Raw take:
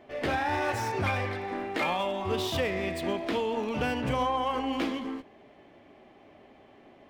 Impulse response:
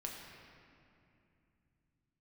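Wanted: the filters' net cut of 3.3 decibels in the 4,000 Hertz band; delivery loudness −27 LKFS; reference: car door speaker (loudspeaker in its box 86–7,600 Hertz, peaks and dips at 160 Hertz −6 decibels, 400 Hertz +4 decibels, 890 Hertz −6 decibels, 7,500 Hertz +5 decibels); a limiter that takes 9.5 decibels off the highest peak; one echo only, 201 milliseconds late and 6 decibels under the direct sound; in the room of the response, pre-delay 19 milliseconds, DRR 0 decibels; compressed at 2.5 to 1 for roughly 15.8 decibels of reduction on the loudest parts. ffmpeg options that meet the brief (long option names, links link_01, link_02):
-filter_complex "[0:a]equalizer=frequency=4000:width_type=o:gain=-4.5,acompressor=threshold=-50dB:ratio=2.5,alimiter=level_in=17dB:limit=-24dB:level=0:latency=1,volume=-17dB,aecho=1:1:201:0.501,asplit=2[link_01][link_02];[1:a]atrim=start_sample=2205,adelay=19[link_03];[link_02][link_03]afir=irnorm=-1:irlink=0,volume=1dB[link_04];[link_01][link_04]amix=inputs=2:normalize=0,highpass=86,equalizer=frequency=160:width_type=q:width=4:gain=-6,equalizer=frequency=400:width_type=q:width=4:gain=4,equalizer=frequency=890:width_type=q:width=4:gain=-6,equalizer=frequency=7500:width_type=q:width=4:gain=5,lowpass=frequency=7600:width=0.5412,lowpass=frequency=7600:width=1.3066,volume=19dB"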